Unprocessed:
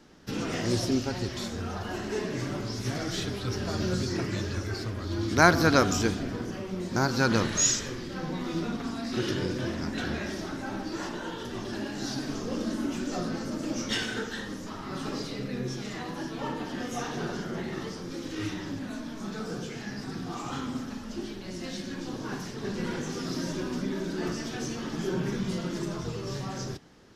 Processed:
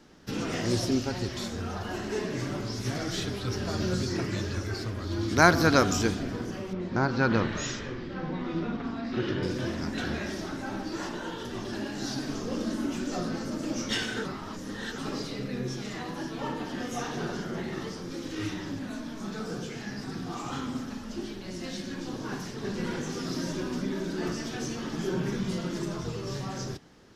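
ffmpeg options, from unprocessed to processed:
ffmpeg -i in.wav -filter_complex "[0:a]asettb=1/sr,asplit=3[link_01][link_02][link_03];[link_01]atrim=end=6.734[link_04];[link_02]atrim=start=6.73:end=9.43,asetpts=PTS-STARTPTS,afade=type=in:duration=0.004:curve=qsin,afade=type=out:start_time=2.696:duration=0.004:curve=qsin,lowpass=2900[link_05];[link_03]atrim=start=9.426[link_06];[link_04][link_05]acrossfade=duration=0.004:curve1=hsin:curve2=qsin[link_07];[link_07][link_06]acrossfade=duration=0.004:curve1=qsin:curve2=hsin,asplit=3[link_08][link_09][link_10];[link_08]atrim=end=14.252[link_11];[link_09]atrim=start=14.248:end=14.982,asetpts=PTS-STARTPTS,areverse[link_12];[link_10]atrim=start=14.978[link_13];[link_11][link_12]acrossfade=duration=0.004:curve1=hsin:curve2=hsin[link_14];[link_14][link_13]acrossfade=duration=0.004:curve1=hsin:curve2=hsin" out.wav

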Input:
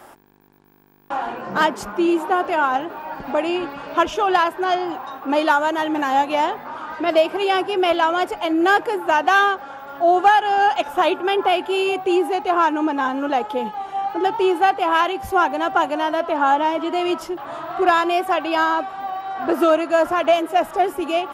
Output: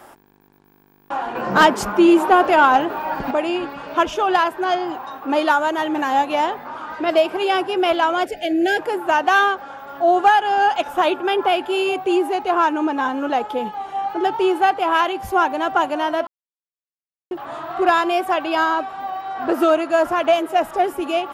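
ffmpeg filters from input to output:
ffmpeg -i in.wav -filter_complex "[0:a]asettb=1/sr,asplit=3[link_01][link_02][link_03];[link_01]atrim=end=1.354[link_04];[link_02]atrim=start=1.35:end=3.31,asetpts=PTS-STARTPTS,afade=type=in:duration=0.004:curve=qsin,afade=type=out:start_time=1.956:duration=0.004:curve=qsin,acontrast=70[link_05];[link_03]atrim=start=3.306[link_06];[link_04][link_05]acrossfade=duration=0.004:curve1=hsin:curve2=qsin[link_07];[link_07][link_06]acrossfade=duration=0.004:curve1=qsin:curve2=hsin,asplit=3[link_08][link_09][link_10];[link_08]afade=type=out:start_time=8.24:duration=0.02[link_11];[link_09]asuperstop=centerf=1100:order=8:qfactor=1.3,afade=type=in:start_time=8.24:duration=0.02,afade=type=out:start_time=8.77:duration=0.02[link_12];[link_10]afade=type=in:start_time=8.77:duration=0.02[link_13];[link_11][link_12][link_13]amix=inputs=3:normalize=0,asplit=3[link_14][link_15][link_16];[link_14]atrim=end=16.27,asetpts=PTS-STARTPTS,afade=type=out:start_time=16.266:duration=0.004:curve=hsin[link_17];[link_15]atrim=start=16.27:end=17.31,asetpts=PTS-STARTPTS,volume=0[link_18];[link_16]atrim=start=17.31,asetpts=PTS-STARTPTS,afade=type=in:duration=0.004:curve=hsin[link_19];[link_17][link_18][link_19]concat=n=3:v=0:a=1" out.wav

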